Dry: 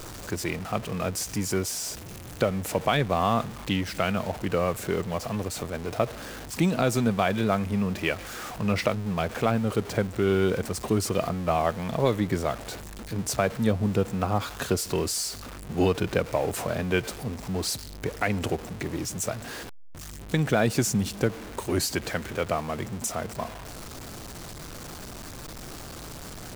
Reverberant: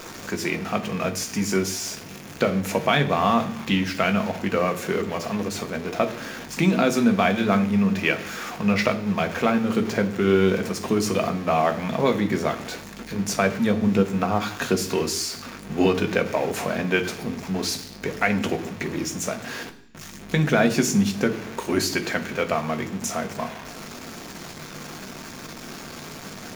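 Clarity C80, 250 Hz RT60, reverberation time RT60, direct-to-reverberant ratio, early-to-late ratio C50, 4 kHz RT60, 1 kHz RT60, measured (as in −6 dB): 16.5 dB, 0.95 s, 0.70 s, 6.0 dB, 14.0 dB, 0.90 s, 0.70 s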